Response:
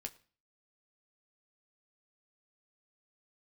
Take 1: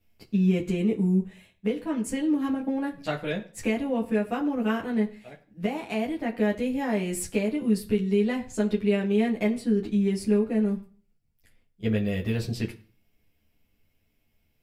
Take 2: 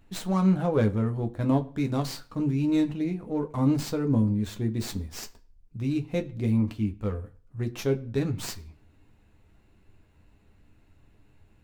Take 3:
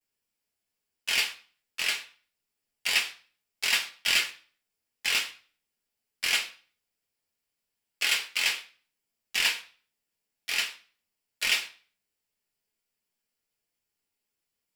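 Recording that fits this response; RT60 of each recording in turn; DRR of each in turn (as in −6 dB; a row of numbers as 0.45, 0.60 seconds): 2; non-exponential decay, non-exponential decay, non-exponential decay; −5.0, 4.0, −14.0 decibels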